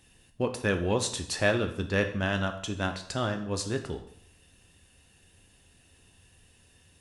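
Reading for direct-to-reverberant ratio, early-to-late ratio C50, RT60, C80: 5.5 dB, 11.0 dB, 0.65 s, 13.5 dB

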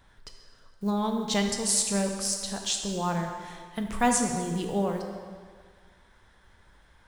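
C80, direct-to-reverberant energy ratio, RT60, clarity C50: 6.0 dB, 3.0 dB, 1.8 s, 5.0 dB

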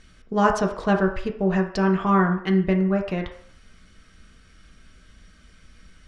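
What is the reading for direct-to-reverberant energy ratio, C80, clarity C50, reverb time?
1.5 dB, 12.5 dB, 8.5 dB, 0.60 s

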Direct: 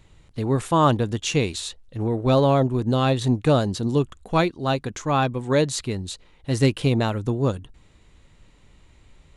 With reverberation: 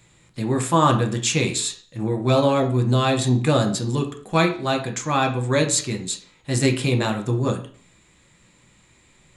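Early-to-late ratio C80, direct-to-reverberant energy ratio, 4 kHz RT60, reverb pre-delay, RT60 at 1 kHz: 15.0 dB, 3.0 dB, 0.45 s, 3 ms, 0.45 s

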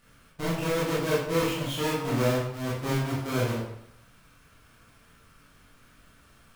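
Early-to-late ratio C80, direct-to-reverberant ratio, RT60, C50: 4.5 dB, −8.0 dB, 0.80 s, 1.0 dB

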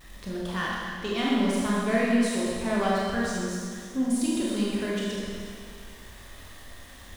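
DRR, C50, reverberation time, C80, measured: −6.0 dB, −2.5 dB, 2.1 s, −1.0 dB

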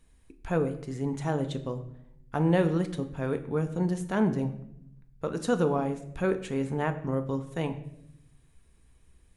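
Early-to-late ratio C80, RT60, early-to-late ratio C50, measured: 15.0 dB, 0.75 s, 13.0 dB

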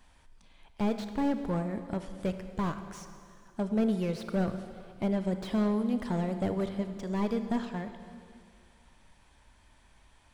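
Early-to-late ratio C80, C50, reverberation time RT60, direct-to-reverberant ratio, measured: 10.0 dB, 9.0 dB, 2.4 s, 8.5 dB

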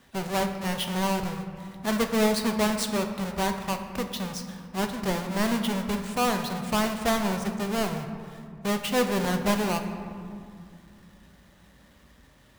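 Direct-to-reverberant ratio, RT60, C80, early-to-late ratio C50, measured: 5.0 dB, 2.2 s, 8.5 dB, 7.0 dB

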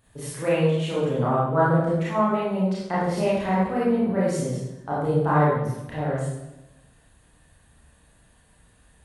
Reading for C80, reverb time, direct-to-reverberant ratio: 2.0 dB, 0.95 s, −9.0 dB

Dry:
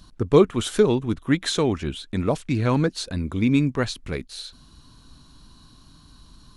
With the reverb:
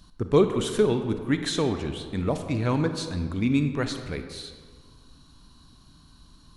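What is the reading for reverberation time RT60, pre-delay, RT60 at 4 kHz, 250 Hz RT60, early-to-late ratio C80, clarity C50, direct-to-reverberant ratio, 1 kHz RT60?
1.7 s, 30 ms, 1.0 s, 1.7 s, 9.5 dB, 8.0 dB, 7.0 dB, 1.7 s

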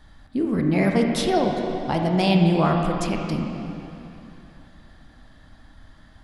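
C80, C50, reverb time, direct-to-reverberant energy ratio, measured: 3.5 dB, 2.5 dB, 2.9 s, 1.5 dB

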